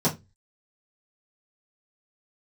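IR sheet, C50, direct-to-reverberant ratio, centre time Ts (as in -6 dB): 15.0 dB, -9.5 dB, 15 ms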